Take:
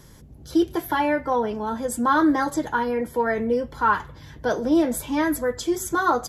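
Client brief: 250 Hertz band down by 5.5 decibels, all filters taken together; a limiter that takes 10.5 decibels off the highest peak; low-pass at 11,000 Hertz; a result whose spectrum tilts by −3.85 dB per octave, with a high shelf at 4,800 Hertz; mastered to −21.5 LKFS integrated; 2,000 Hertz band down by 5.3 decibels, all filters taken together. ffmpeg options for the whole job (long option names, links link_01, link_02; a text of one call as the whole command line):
ffmpeg -i in.wav -af "lowpass=11000,equalizer=frequency=250:width_type=o:gain=-7.5,equalizer=frequency=2000:width_type=o:gain=-8.5,highshelf=frequency=4800:gain=4.5,volume=9dB,alimiter=limit=-12.5dB:level=0:latency=1" out.wav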